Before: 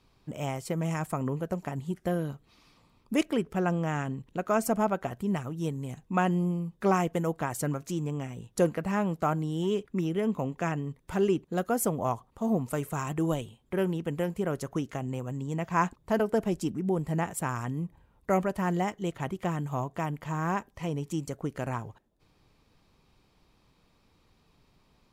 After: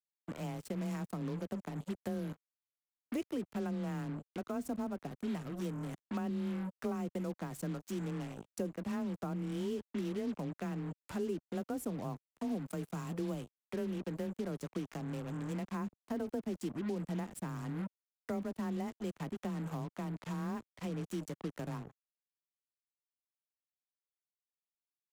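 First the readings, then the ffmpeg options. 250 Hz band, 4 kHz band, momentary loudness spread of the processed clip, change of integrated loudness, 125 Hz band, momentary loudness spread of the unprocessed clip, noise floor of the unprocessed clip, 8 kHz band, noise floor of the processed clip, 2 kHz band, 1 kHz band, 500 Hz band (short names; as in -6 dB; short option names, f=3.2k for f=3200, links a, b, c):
-7.0 dB, -8.5 dB, 4 LU, -9.0 dB, -9.5 dB, 8 LU, -67 dBFS, -12.5 dB, under -85 dBFS, -13.0 dB, -15.0 dB, -11.0 dB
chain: -filter_complex "[0:a]afreqshift=20,acrusher=bits=5:mix=0:aa=0.5,acrossover=split=110|390[a][b][c];[a]acompressor=threshold=-54dB:ratio=4[d];[b]acompressor=threshold=-31dB:ratio=4[e];[c]acompressor=threshold=-42dB:ratio=4[f];[d][e][f]amix=inputs=3:normalize=0,volume=-4.5dB"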